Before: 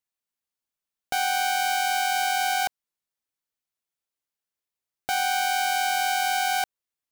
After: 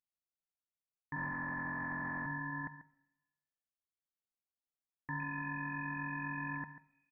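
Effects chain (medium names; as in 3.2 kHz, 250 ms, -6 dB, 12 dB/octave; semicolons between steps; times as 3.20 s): 1.16–2.26 s: one-bit delta coder 32 kbps, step -35.5 dBFS; high-pass 73 Hz 12 dB/octave; differentiator; comb 1.7 ms, depth 32%; in parallel at -0.5 dB: peak limiter -22 dBFS, peak gain reduction 10.5 dB; 5.20–6.56 s: on the sum: small samples zeroed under -42 dBFS; speakerphone echo 140 ms, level -9 dB; reverberation RT60 1.1 s, pre-delay 7 ms, DRR 13 dB; frequency inversion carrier 2.5 kHz; upward expansion 1.5:1, over -51 dBFS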